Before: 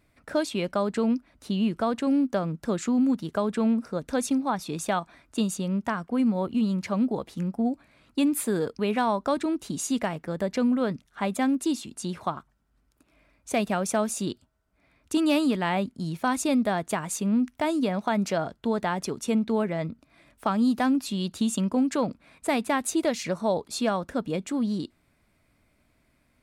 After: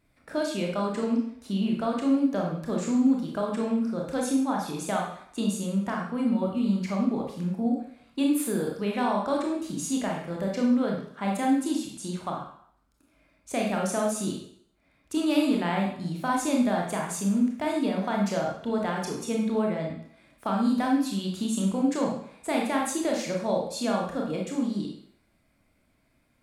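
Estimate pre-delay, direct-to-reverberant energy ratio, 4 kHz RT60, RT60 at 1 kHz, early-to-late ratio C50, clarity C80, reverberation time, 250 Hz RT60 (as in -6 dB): 22 ms, -1.0 dB, 0.60 s, 0.70 s, 3.0 dB, 7.0 dB, 0.65 s, 0.55 s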